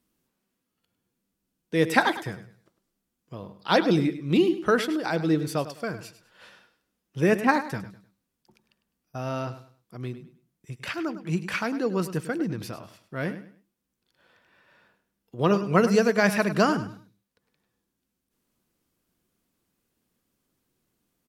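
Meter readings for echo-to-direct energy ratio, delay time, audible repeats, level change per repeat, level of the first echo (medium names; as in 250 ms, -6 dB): -12.5 dB, 102 ms, 2, -11.0 dB, -13.0 dB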